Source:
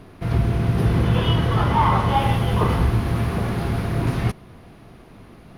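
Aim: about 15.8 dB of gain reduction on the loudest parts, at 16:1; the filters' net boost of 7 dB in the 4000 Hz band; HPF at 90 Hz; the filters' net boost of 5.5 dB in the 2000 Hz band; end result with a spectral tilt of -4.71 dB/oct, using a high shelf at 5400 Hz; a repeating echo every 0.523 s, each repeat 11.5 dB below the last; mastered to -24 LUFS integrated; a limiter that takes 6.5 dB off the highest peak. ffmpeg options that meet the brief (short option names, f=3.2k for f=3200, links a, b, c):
-af "highpass=90,equalizer=f=2k:t=o:g=4.5,equalizer=f=4k:t=o:g=4.5,highshelf=f=5.4k:g=9,acompressor=threshold=-30dB:ratio=16,alimiter=level_in=2.5dB:limit=-24dB:level=0:latency=1,volume=-2.5dB,aecho=1:1:523|1046|1569:0.266|0.0718|0.0194,volume=12dB"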